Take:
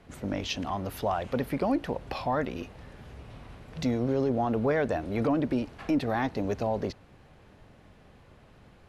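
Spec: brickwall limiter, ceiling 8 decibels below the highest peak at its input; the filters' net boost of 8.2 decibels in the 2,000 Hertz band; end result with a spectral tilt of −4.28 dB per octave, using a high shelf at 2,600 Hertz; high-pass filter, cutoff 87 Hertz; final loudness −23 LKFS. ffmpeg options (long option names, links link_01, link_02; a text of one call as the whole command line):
ffmpeg -i in.wav -af "highpass=87,equalizer=frequency=2000:width_type=o:gain=9,highshelf=frequency=2600:gain=3,volume=8.5dB,alimiter=limit=-12dB:level=0:latency=1" out.wav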